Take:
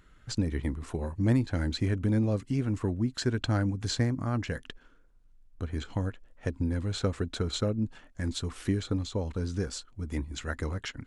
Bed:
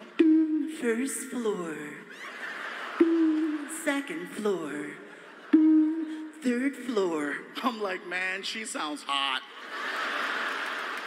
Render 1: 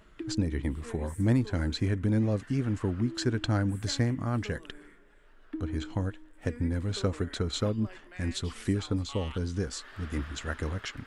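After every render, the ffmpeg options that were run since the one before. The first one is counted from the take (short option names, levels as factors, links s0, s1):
-filter_complex "[1:a]volume=0.133[s0];[0:a][s0]amix=inputs=2:normalize=0"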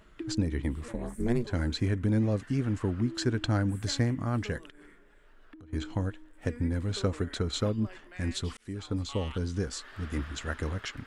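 -filter_complex "[0:a]asettb=1/sr,asplit=3[s0][s1][s2];[s0]atrim=end=0.884[s3];[s1]atrim=start=0.88:end=1.47,asetpts=PTS-STARTPTS,afade=t=in:d=0.004:c=qsin,afade=t=out:st=0.586:d=0.004:c=qsin,aeval=exprs='val(0)*sin(2*PI*120*n/s)':c=same[s4];[s2]atrim=start=1.466[s5];[s3][s4]acrossfade=d=0.004:c1=hsin:c2=qsin[s6];[s6][s5]acrossfade=d=0.004:c1=qsin:c2=hsin,asettb=1/sr,asplit=3[s7][s8][s9];[s7]atrim=end=4.684[s10];[s8]atrim=start=4.68:end=5.73,asetpts=PTS-STARTPTS,afade=t=in:d=0.004:c=qsin,afade=t=out:st=1.046:d=0.004:c=qsin,acompressor=threshold=0.00447:ratio=12:attack=3.2:release=140:knee=1:detection=peak[s11];[s9]atrim=start=5.726[s12];[s10][s11]acrossfade=d=0.004:c1=hsin:c2=qsin[s13];[s13][s12]acrossfade=d=0.004:c1=qsin:c2=hsin,asplit=2[s14][s15];[s14]atrim=end=8.57,asetpts=PTS-STARTPTS,afade=t=out:st=8.566:d=0.004:c=hsin[s16];[s15]atrim=start=8.57,asetpts=PTS-STARTPTS,afade=t=in:d=0.48[s17];[s16][s17]concat=n=2:v=0:a=1"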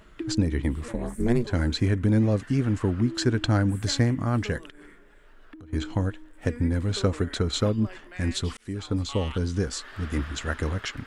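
-af "volume=1.78"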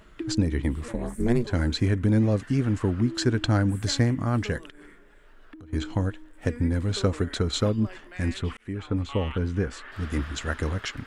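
-filter_complex "[0:a]asettb=1/sr,asplit=3[s0][s1][s2];[s0]atrim=end=8.344[s3];[s1]atrim=start=8.34:end=9.92,asetpts=PTS-STARTPTS,afade=t=in:d=0.004:c=qsin,afade=t=out:st=1.576:d=0.004:c=qsin,highshelf=f=3400:t=q:w=1.5:g=-10[s4];[s2]atrim=start=9.916[s5];[s3][s4]acrossfade=d=0.004:c1=hsin:c2=qsin[s6];[s6][s5]acrossfade=d=0.004:c1=qsin:c2=hsin"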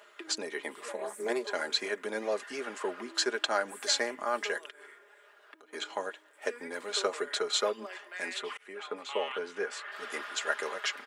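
-af "highpass=f=470:w=0.5412,highpass=f=470:w=1.3066,aecho=1:1:4.9:0.57"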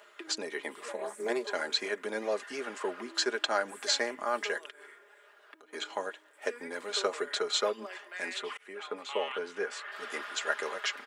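-filter_complex "[0:a]acrossover=split=9000[s0][s1];[s1]acompressor=threshold=0.00112:ratio=4:attack=1:release=60[s2];[s0][s2]amix=inputs=2:normalize=0"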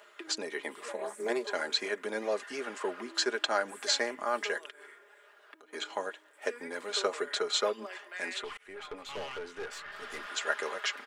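-filter_complex "[0:a]asettb=1/sr,asplit=3[s0][s1][s2];[s0]atrim=end=8.444[s3];[s1]atrim=start=8.44:end=10.27,asetpts=PTS-STARTPTS,afade=t=in:d=0.004:c=qsin,afade=t=out:st=1.826:d=0.004:c=qsin,aeval=exprs='(tanh(56.2*val(0)+0.4)-tanh(0.4))/56.2':c=same[s4];[s2]atrim=start=10.266[s5];[s3][s4]acrossfade=d=0.004:c1=hsin:c2=qsin[s6];[s6][s5]acrossfade=d=0.004:c1=qsin:c2=hsin"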